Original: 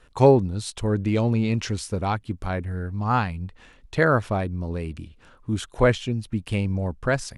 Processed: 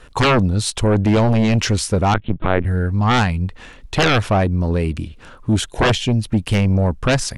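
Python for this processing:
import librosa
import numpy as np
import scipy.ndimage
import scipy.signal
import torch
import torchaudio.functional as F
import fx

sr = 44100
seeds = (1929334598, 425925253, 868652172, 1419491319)

y = fx.peak_eq(x, sr, hz=1200.0, db=-12.5, octaves=0.42, at=(5.6, 6.15))
y = fx.fold_sine(y, sr, drive_db=14, ceiling_db=-4.0)
y = fx.lpc_vocoder(y, sr, seeds[0], excitation='pitch_kept', order=8, at=(2.14, 2.65))
y = y * 10.0 ** (-6.5 / 20.0)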